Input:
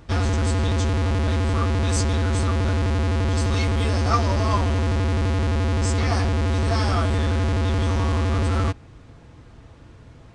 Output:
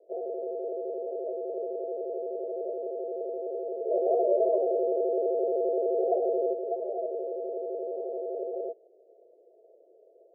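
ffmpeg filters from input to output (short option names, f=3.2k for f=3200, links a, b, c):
-filter_complex "[0:a]asettb=1/sr,asplit=3[a][b][c];[a]atrim=end=3.904[d];[b]atrim=start=3.9:end=6.53,asetpts=PTS-STARTPTS,afade=t=in:d=0.004:c=qsin,afade=t=out:st=2.626:d=0.004:c=qsin,acontrast=87[e];[c]atrim=start=6.526[f];[d][e]acrossfade=d=0.004:c1=hsin:c2=qsin[g];[g][f]acrossfade=d=0.004:c1=qsin:c2=hsin,asuperpass=centerf=500:order=12:qfactor=1.6"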